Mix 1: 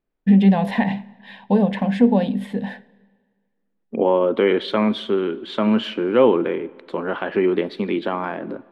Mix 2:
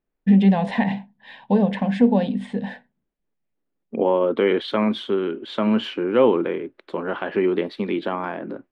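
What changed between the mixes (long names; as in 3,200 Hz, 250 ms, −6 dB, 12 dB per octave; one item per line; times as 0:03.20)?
first voice: add Butterworth low-pass 9,500 Hz 72 dB per octave
reverb: off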